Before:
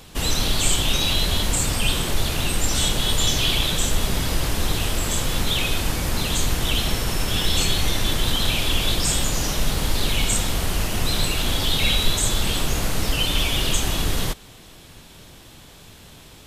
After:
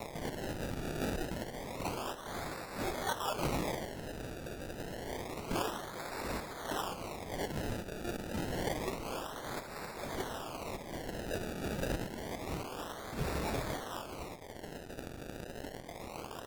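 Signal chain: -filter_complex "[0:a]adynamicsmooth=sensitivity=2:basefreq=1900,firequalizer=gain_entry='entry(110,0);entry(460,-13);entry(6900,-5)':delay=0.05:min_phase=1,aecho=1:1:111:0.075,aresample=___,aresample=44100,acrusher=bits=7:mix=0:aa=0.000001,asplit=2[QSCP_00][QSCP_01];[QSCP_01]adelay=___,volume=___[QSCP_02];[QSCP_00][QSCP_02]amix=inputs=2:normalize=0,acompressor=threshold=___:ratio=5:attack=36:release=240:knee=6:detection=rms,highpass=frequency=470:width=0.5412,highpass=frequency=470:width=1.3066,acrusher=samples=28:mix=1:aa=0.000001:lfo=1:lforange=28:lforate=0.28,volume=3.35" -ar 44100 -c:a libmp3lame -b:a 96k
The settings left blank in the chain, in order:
8000, 24, 0.596, 0.0316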